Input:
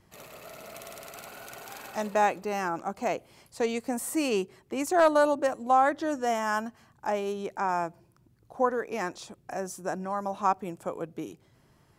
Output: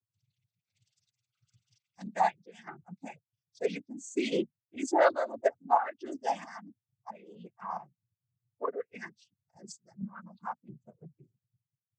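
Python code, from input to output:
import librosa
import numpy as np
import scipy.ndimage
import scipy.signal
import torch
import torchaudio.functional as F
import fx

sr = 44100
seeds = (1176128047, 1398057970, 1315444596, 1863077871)

y = fx.bin_expand(x, sr, power=3.0)
y = fx.chopper(y, sr, hz=1.5, depth_pct=65, duty_pct=65)
y = fx.noise_vocoder(y, sr, seeds[0], bands=16)
y = F.gain(torch.from_numpy(y), 2.0).numpy()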